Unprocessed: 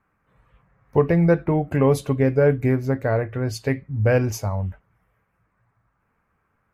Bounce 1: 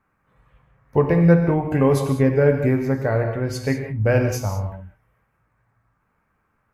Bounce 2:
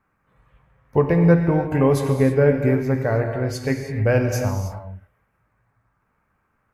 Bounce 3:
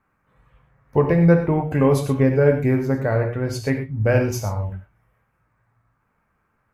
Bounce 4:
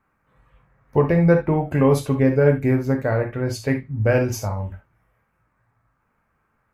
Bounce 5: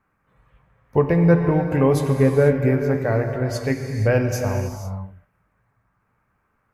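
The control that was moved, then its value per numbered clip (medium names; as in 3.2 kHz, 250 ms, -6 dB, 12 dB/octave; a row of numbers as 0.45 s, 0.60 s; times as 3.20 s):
gated-style reverb, gate: 220 ms, 350 ms, 140 ms, 90 ms, 520 ms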